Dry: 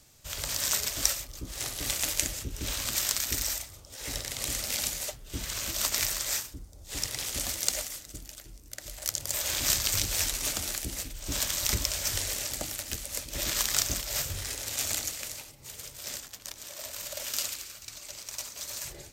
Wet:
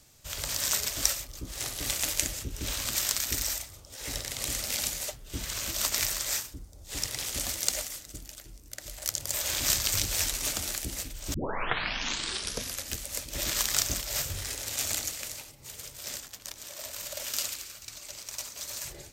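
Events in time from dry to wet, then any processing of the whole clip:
11.34 s: tape start 1.58 s

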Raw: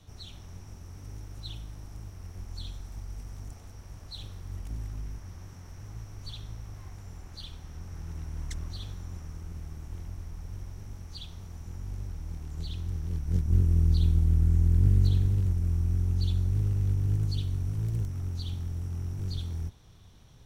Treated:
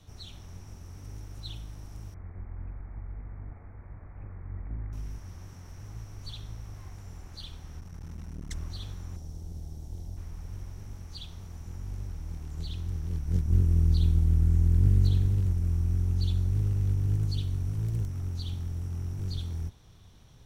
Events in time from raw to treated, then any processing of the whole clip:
2.14–4.93 s: steep low-pass 2.3 kHz 96 dB/octave
7.80–8.51 s: transformer saturation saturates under 160 Hz
9.16–10.17 s: high-order bell 1.7 kHz -12.5 dB

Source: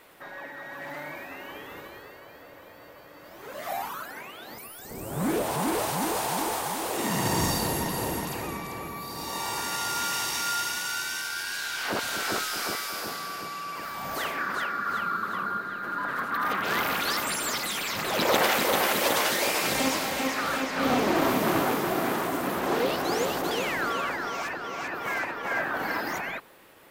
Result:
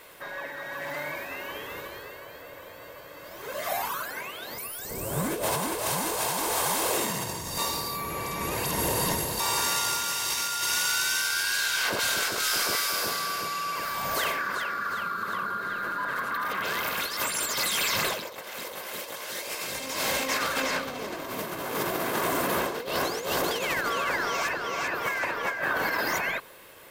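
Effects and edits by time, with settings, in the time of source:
7.58–9.40 s: reverse
14.31–16.88 s: compression, threshold -30 dBFS
whole clip: treble shelf 2.4 kHz +5 dB; comb 1.9 ms, depth 34%; compressor with a negative ratio -28 dBFS, ratio -0.5

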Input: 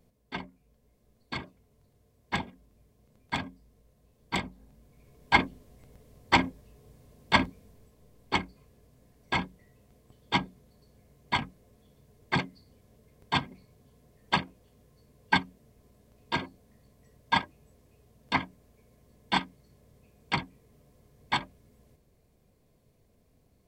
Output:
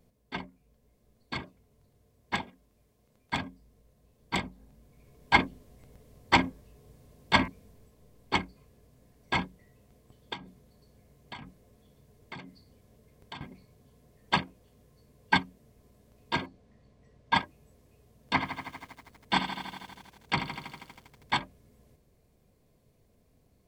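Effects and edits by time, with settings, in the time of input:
2.35–3.33 s: bass shelf 320 Hz -6.5 dB
6.42–7.48 s: de-hum 112.2 Hz, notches 27
10.33–13.41 s: compression 16:1, threshold -38 dBFS
16.46–17.35 s: Bessel low-pass 4.4 kHz
18.33–21.40 s: bit-crushed delay 80 ms, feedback 80%, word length 9-bit, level -9.5 dB

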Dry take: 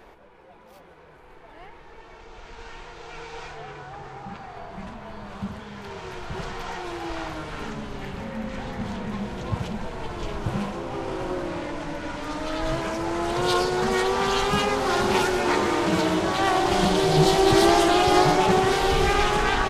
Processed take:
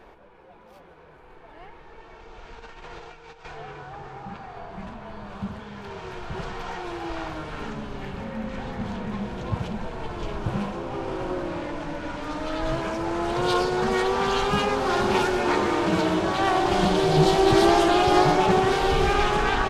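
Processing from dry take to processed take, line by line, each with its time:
2.59–3.45 s: compressor with a negative ratio -42 dBFS, ratio -0.5
whole clip: treble shelf 5.5 kHz -8 dB; band-stop 2 kHz, Q 22

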